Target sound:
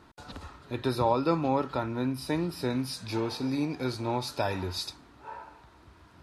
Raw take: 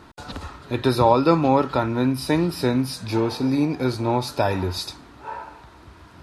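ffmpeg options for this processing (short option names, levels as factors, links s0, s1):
-filter_complex "[0:a]asettb=1/sr,asplit=3[s0][s1][s2];[s0]atrim=end=2.704[s3];[s1]atrim=start=2.7:end=4.9,asetpts=PTS-STARTPTS,afade=t=in:d=0.004:c=qsin,afade=t=out:st=2.196:d=0.004:c=qsin,equalizer=f=4800:w=0.33:g=4.5[s4];[s2]atrim=start=4.896[s5];[s3][s4]acrossfade=d=0.004:c1=hsin:c2=qsin[s6];[s6][s5]acrossfade=d=0.004:c1=qsin:c2=hsin,volume=0.355"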